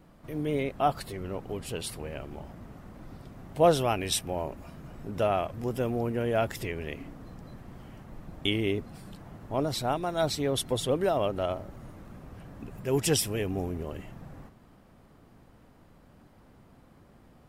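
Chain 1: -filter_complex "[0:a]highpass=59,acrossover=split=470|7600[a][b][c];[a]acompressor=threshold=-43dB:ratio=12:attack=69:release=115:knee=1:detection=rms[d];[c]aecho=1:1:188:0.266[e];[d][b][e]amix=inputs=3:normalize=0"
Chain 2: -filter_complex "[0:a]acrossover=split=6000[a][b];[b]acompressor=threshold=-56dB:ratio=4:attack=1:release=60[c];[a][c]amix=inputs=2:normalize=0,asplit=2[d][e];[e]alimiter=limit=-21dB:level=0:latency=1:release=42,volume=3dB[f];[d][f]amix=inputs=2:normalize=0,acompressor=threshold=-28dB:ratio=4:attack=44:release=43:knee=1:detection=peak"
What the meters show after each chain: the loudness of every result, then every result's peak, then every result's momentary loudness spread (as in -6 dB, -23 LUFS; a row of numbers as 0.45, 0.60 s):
-32.5, -28.0 LUFS; -12.5, -11.0 dBFS; 19, 14 LU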